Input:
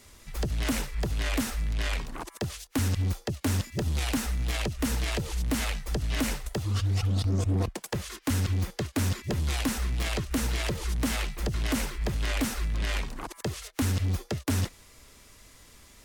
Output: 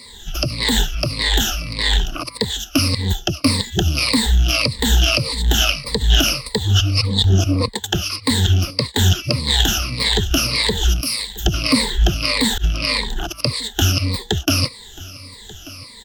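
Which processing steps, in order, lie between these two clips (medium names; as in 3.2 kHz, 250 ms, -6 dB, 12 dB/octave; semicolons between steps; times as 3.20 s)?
drifting ripple filter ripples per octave 0.96, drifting -1.7 Hz, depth 22 dB; 11.01–11.46 s: pre-emphasis filter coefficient 0.8; delay 1187 ms -20.5 dB; 12.02–12.64 s: slow attack 138 ms; high-order bell 3.9 kHz +9.5 dB 1.2 oct; trim +5.5 dB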